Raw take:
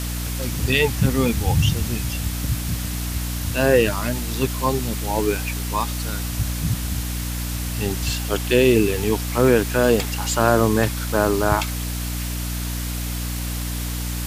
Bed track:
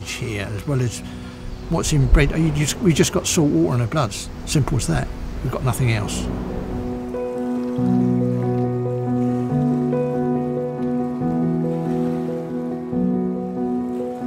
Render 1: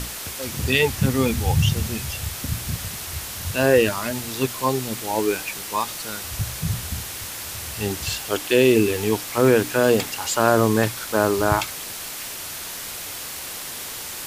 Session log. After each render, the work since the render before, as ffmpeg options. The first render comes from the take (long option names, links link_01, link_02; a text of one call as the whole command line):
ffmpeg -i in.wav -af "bandreject=frequency=60:width_type=h:width=6,bandreject=frequency=120:width_type=h:width=6,bandreject=frequency=180:width_type=h:width=6,bandreject=frequency=240:width_type=h:width=6,bandreject=frequency=300:width_type=h:width=6" out.wav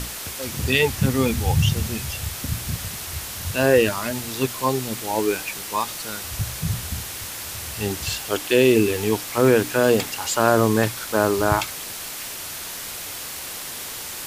ffmpeg -i in.wav -af anull out.wav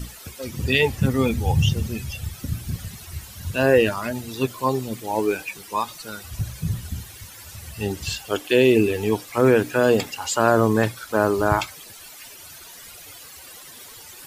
ffmpeg -i in.wav -af "afftdn=noise_reduction=14:noise_floor=-33" out.wav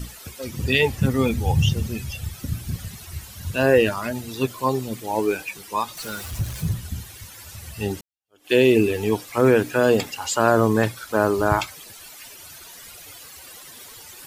ffmpeg -i in.wav -filter_complex "[0:a]asettb=1/sr,asplit=3[link_01][link_02][link_03];[link_01]atrim=end=5.974[link_04];[link_02]atrim=start=5.97:end=6.73,asetpts=PTS-STARTPTS,afade=type=in:duration=0.004:curve=qsin,afade=type=out:start_time=0.756:duration=0.004:curve=qsin,aeval=exprs='val(0)+0.5*0.02*sgn(val(0))':channel_layout=same[link_05];[link_03]atrim=start=6.726[link_06];[link_04][link_05]acrossfade=duration=0.004:curve1=hsin:curve2=qsin[link_07];[link_07][link_06]acrossfade=duration=0.004:curve1=qsin:curve2=hsin,asplit=2[link_08][link_09];[link_08]atrim=end=8.01,asetpts=PTS-STARTPTS,afade=type=out:start_time=8.006:duration=0.004:curve=hsin[link_10];[link_09]atrim=start=8.01,asetpts=PTS-STARTPTS,afade=type=in:duration=0.51:curve=exp[link_11];[link_10][link_11]concat=n=2:v=0:a=1" out.wav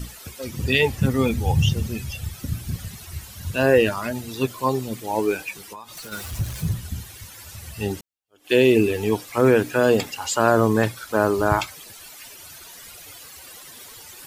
ffmpeg -i in.wav -filter_complex "[0:a]asplit=3[link_01][link_02][link_03];[link_01]afade=type=out:start_time=5.65:duration=0.02[link_04];[link_02]acompressor=threshold=-34dB:ratio=12:attack=3.2:release=140:knee=1:detection=peak,afade=type=in:start_time=5.65:duration=0.02,afade=type=out:start_time=6.11:duration=0.02[link_05];[link_03]afade=type=in:start_time=6.11:duration=0.02[link_06];[link_04][link_05][link_06]amix=inputs=3:normalize=0" out.wav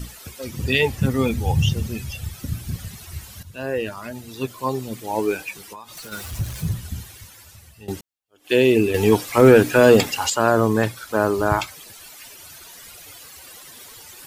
ffmpeg -i in.wav -filter_complex "[0:a]asettb=1/sr,asplit=3[link_01][link_02][link_03];[link_01]atrim=end=8.944[link_04];[link_02]atrim=start=8.94:end=10.3,asetpts=PTS-STARTPTS,afade=type=in:duration=0.004:curve=qsin,afade=type=out:start_time=1.356:duration=0.004:curve=qsin,acontrast=80[link_05];[link_03]atrim=start=10.296[link_06];[link_04][link_05]acrossfade=duration=0.004:curve1=hsin:curve2=qsin[link_07];[link_07][link_06]acrossfade=duration=0.004:curve1=qsin:curve2=hsin,asplit=3[link_08][link_09][link_10];[link_08]atrim=end=3.43,asetpts=PTS-STARTPTS,afade=type=out:start_time=3.426:duration=0.004:curve=hsin:silence=0.211349[link_11];[link_09]atrim=start=3.43:end=7.88,asetpts=PTS-STARTPTS,afade=type=in:duration=1.77:silence=0.211349,afade=type=out:start_time=3.58:duration=0.87:silence=0.112202[link_12];[link_10]atrim=start=7.88,asetpts=PTS-STARTPTS,afade=type=in:duration=0.004:curve=hsin:silence=0.112202[link_13];[link_11][link_12][link_13]concat=n=3:v=0:a=1" out.wav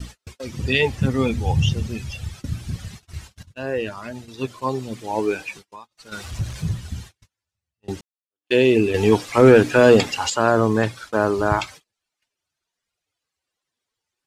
ffmpeg -i in.wav -af "lowpass=7100,agate=range=-38dB:threshold=-38dB:ratio=16:detection=peak" out.wav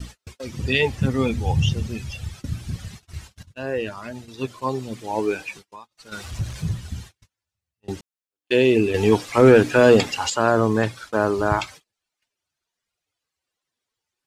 ffmpeg -i in.wav -af "volume=-1dB" out.wav